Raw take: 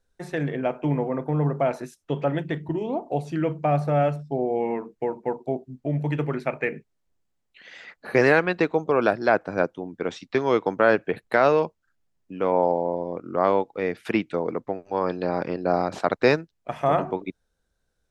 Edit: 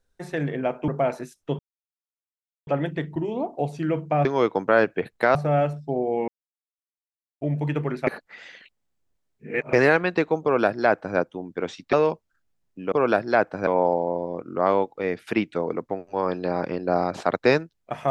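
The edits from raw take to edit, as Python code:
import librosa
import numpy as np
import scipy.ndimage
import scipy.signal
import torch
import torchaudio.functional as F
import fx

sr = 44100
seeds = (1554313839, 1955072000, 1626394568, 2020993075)

y = fx.edit(x, sr, fx.cut(start_s=0.88, length_s=0.61),
    fx.insert_silence(at_s=2.2, length_s=1.08),
    fx.silence(start_s=4.71, length_s=1.13),
    fx.reverse_span(start_s=6.5, length_s=1.66),
    fx.duplicate(start_s=8.86, length_s=0.75, to_s=12.45),
    fx.move(start_s=10.36, length_s=1.1, to_s=3.78), tone=tone)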